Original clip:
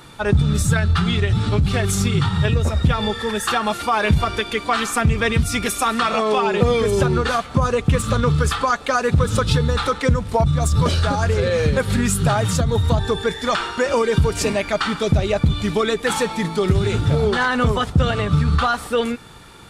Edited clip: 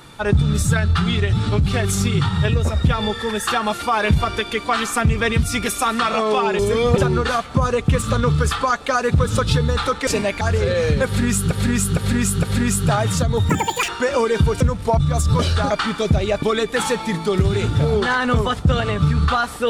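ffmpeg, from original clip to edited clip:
-filter_complex "[0:a]asplit=13[s0][s1][s2][s3][s4][s5][s6][s7][s8][s9][s10][s11][s12];[s0]atrim=end=6.592[s13];[s1]atrim=start=6.588:end=6.982,asetpts=PTS-STARTPTS,areverse[s14];[s2]atrim=start=6.978:end=10.072[s15];[s3]atrim=start=14.378:end=14.722[s16];[s4]atrim=start=11.168:end=12.272[s17];[s5]atrim=start=11.808:end=12.272[s18];[s6]atrim=start=11.808:end=12.272[s19];[s7]atrim=start=11.808:end=12.874[s20];[s8]atrim=start=12.87:end=13.66,asetpts=PTS-STARTPTS,asetrate=88200,aresample=44100[s21];[s9]atrim=start=13.656:end=14.382[s22];[s10]atrim=start=10.068:end=11.172[s23];[s11]atrim=start=14.718:end=15.442[s24];[s12]atrim=start=15.728[s25];[s13][s14]acrossfade=d=0.004:c1=hsin:c2=hsin[s26];[s26][s15]acrossfade=d=0.004:c1=hsin:c2=hsin[s27];[s27][s16]acrossfade=d=0.004:c1=hsin:c2=hsin[s28];[s28][s17]acrossfade=d=0.004:c1=hsin:c2=hsin[s29];[s29][s18]acrossfade=d=0.004:c1=hsin:c2=hsin[s30];[s30][s19]acrossfade=d=0.004:c1=hsin:c2=hsin[s31];[s31][s20]acrossfade=d=0.004:c1=hsin:c2=hsin[s32];[s32][s21]acrossfade=d=0.004:c1=hsin:c2=hsin[s33];[s33][s22]acrossfade=d=0.004:c1=hsin:c2=hsin[s34];[s34][s23]acrossfade=d=0.004:c1=hsin:c2=hsin[s35];[s35][s24]acrossfade=d=0.004:c1=hsin:c2=hsin[s36];[s36][s25]acrossfade=d=0.004:c1=hsin:c2=hsin"

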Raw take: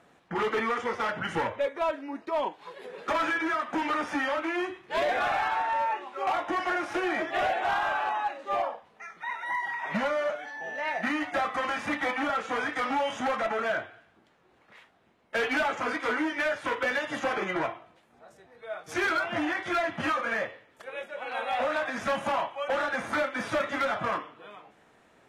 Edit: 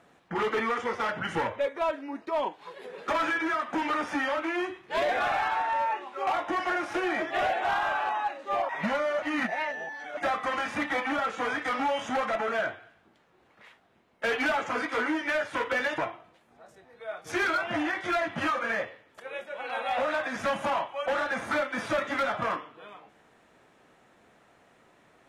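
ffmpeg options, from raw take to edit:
-filter_complex "[0:a]asplit=5[s0][s1][s2][s3][s4];[s0]atrim=end=8.692[s5];[s1]atrim=start=9.798:end=10.332[s6];[s2]atrim=start=10.328:end=11.282,asetpts=PTS-STARTPTS,areverse[s7];[s3]atrim=start=11.278:end=17.092[s8];[s4]atrim=start=17.598[s9];[s5][s6]acrossfade=d=0.004:c1=hsin:c2=hsin[s10];[s10][s7]acrossfade=d=0.004:c1=hsin:c2=hsin[s11];[s11][s8]acrossfade=d=0.004:c1=hsin:c2=hsin[s12];[s12][s9]acrossfade=d=0.004:c1=hsin:c2=hsin"

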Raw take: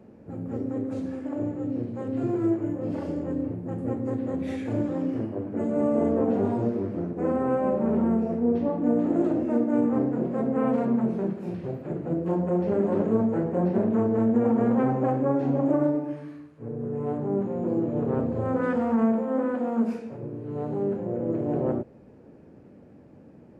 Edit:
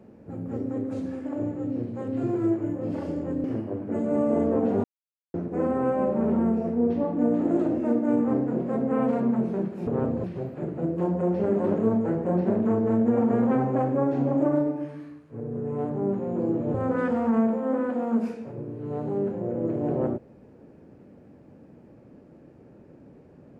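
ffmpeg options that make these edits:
-filter_complex "[0:a]asplit=7[s0][s1][s2][s3][s4][s5][s6];[s0]atrim=end=3.442[s7];[s1]atrim=start=5.088:end=6.49,asetpts=PTS-STARTPTS,afade=t=out:st=1.398:d=0.004:c=hsin[s8];[s2]atrim=start=6.49:end=6.99,asetpts=PTS-STARTPTS,volume=0[s9];[s3]atrim=start=6.99:end=11.522,asetpts=PTS-STARTPTS,afade=t=in:d=0.004:c=hsin[s10];[s4]atrim=start=18.018:end=18.392[s11];[s5]atrim=start=11.518:end=18.022[s12];[s6]atrim=start=18.388[s13];[s8][s9][s10]concat=n=3:v=0:a=1[s14];[s7][s14]acrossfade=d=0.004:c1=hsin:c2=hsin[s15];[s15][s11]acrossfade=d=0.004:c1=hsin:c2=hsin[s16];[s16][s12]acrossfade=d=0.004:c1=hsin:c2=hsin[s17];[s17][s13]acrossfade=d=0.004:c1=hsin:c2=hsin"

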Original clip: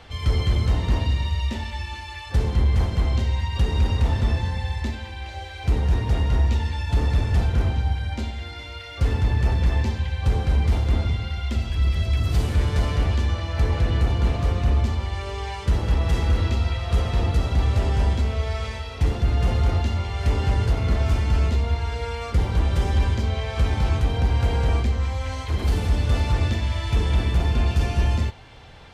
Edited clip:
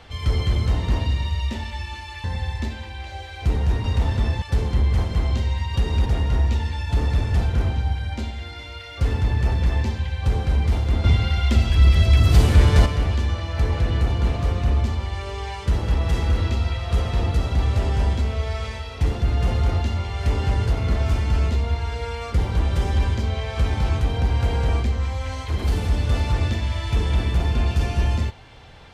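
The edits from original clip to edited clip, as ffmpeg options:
-filter_complex "[0:a]asplit=7[s0][s1][s2][s3][s4][s5][s6];[s0]atrim=end=2.242[s7];[s1]atrim=start=4.458:end=6.062[s8];[s2]atrim=start=3.878:end=4.462[s9];[s3]atrim=start=2.238:end=3.882[s10];[s4]atrim=start=6.058:end=11.042[s11];[s5]atrim=start=11.038:end=12.862,asetpts=PTS-STARTPTS,volume=2.24[s12];[s6]atrim=start=12.858[s13];[s7][s8]acrossfade=d=0.004:c1=hsin:c2=hsin[s14];[s14][s9]acrossfade=d=0.004:c1=hsin:c2=hsin[s15];[s15][s10]acrossfade=d=0.004:c1=hsin:c2=hsin[s16];[s16][s11]acrossfade=d=0.004:c1=hsin:c2=hsin[s17];[s17][s12]acrossfade=d=0.004:c1=hsin:c2=hsin[s18];[s18][s13]acrossfade=d=0.004:c1=hsin:c2=hsin"

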